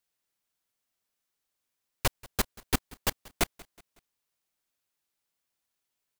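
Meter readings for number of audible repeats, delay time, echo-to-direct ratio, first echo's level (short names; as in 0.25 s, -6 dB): 2, 0.185 s, -21.5 dB, -22.5 dB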